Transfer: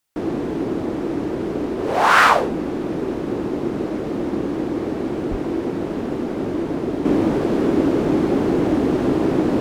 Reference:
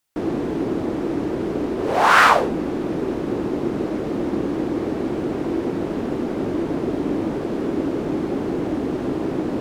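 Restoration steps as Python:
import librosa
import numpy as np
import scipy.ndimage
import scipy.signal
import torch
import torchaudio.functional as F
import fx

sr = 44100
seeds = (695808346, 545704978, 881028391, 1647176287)

y = fx.highpass(x, sr, hz=140.0, slope=24, at=(5.3, 5.42), fade=0.02)
y = fx.gain(y, sr, db=fx.steps((0.0, 0.0), (7.05, -5.5)))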